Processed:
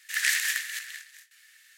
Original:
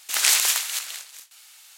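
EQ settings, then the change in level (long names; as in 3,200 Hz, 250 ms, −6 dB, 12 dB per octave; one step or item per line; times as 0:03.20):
four-pole ladder high-pass 1,700 Hz, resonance 85%
+2.0 dB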